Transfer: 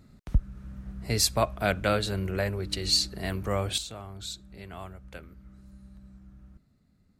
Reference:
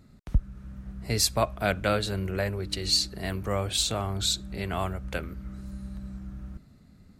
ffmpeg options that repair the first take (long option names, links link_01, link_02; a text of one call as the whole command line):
ffmpeg -i in.wav -af "asetnsamples=nb_out_samples=441:pad=0,asendcmd='3.78 volume volume 11.5dB',volume=0dB" out.wav